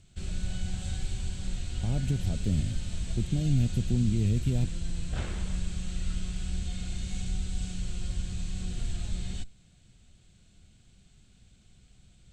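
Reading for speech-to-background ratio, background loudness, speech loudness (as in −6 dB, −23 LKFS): 6.5 dB, −36.5 LKFS, −30.0 LKFS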